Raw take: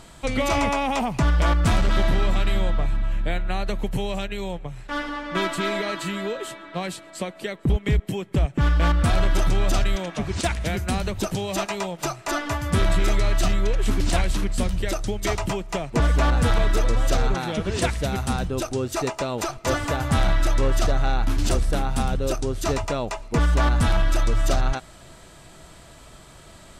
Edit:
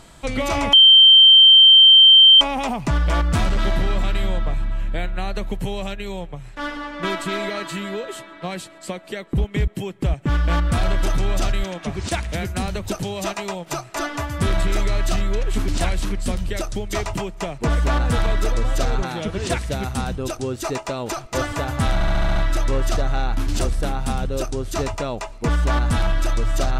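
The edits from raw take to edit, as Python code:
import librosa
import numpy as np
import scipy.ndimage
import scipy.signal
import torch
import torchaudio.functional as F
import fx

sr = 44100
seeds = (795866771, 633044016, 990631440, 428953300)

y = fx.edit(x, sr, fx.insert_tone(at_s=0.73, length_s=1.68, hz=3130.0, db=-6.0),
    fx.stutter(start_s=20.26, slice_s=0.07, count=7), tone=tone)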